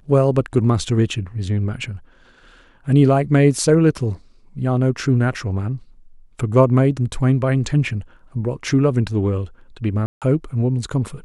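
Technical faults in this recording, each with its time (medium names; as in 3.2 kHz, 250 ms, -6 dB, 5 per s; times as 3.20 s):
10.06–10.22 s: dropout 157 ms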